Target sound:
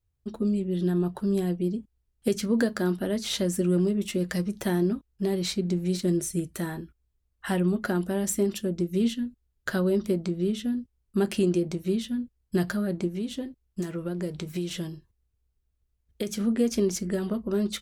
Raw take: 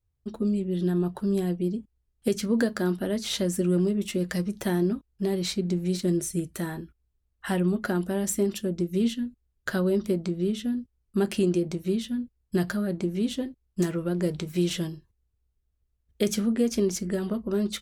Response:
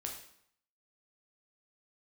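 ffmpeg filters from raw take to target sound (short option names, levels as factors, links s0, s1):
-filter_complex "[0:a]asplit=3[s0][s1][s2];[s0]afade=t=out:st=13.07:d=0.02[s3];[s1]acompressor=threshold=0.0355:ratio=3,afade=t=in:st=13.07:d=0.02,afade=t=out:st=16.39:d=0.02[s4];[s2]afade=t=in:st=16.39:d=0.02[s5];[s3][s4][s5]amix=inputs=3:normalize=0"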